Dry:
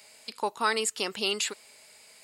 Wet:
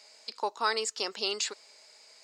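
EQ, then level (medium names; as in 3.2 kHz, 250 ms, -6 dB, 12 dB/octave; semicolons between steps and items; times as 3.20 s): high-pass 380 Hz 12 dB/octave; distance through air 200 m; resonant high shelf 4.1 kHz +12 dB, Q 1.5; 0.0 dB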